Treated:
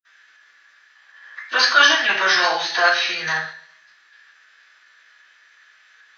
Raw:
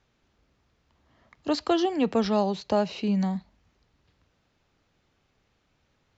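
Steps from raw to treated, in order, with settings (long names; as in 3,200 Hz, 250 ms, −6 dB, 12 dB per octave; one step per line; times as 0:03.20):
high-pass with resonance 1,700 Hz, resonance Q 8.8
convolution reverb RT60 0.60 s, pre-delay 47 ms
phase-vocoder pitch shift with formants kept −3 semitones
level +6 dB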